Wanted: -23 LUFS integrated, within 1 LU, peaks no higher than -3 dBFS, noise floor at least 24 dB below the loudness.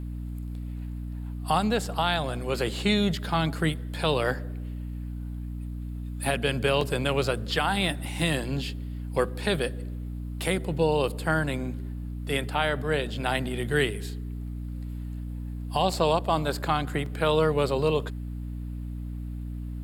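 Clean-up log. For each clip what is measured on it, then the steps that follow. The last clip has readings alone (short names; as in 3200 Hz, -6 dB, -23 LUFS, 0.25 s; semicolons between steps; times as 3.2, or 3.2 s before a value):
dropouts 3; longest dropout 2.8 ms; hum 60 Hz; harmonics up to 300 Hz; hum level -32 dBFS; loudness -28.5 LUFS; peak -11.0 dBFS; loudness target -23.0 LUFS
-> interpolate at 1.86/6.81/17.06, 2.8 ms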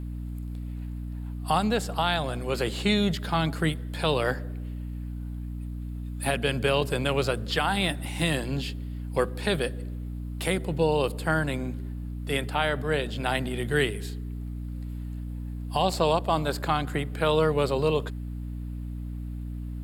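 dropouts 0; hum 60 Hz; harmonics up to 300 Hz; hum level -32 dBFS
-> notches 60/120/180/240/300 Hz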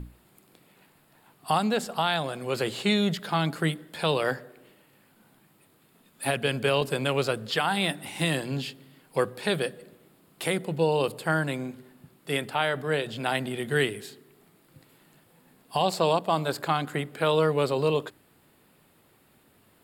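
hum none; loudness -27.5 LUFS; peak -12.0 dBFS; loudness target -23.0 LUFS
-> gain +4.5 dB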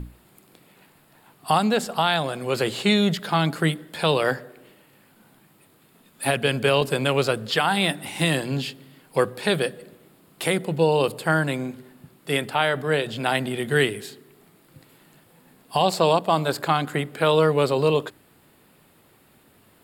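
loudness -23.0 LUFS; peak -7.5 dBFS; noise floor -58 dBFS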